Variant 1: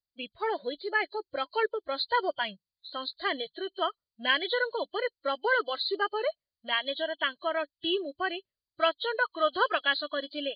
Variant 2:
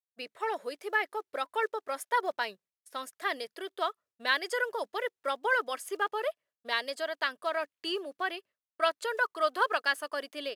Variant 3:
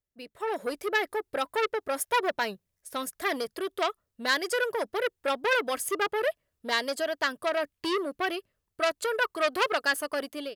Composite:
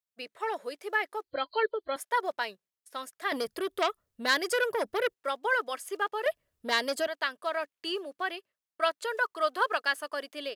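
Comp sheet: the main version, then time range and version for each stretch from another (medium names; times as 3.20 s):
2
1.24–1.96 s: from 1
3.32–5.14 s: from 3
6.26–7.07 s: from 3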